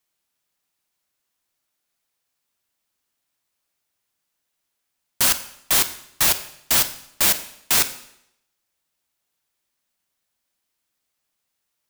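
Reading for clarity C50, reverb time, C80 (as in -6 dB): 13.0 dB, 0.75 s, 15.5 dB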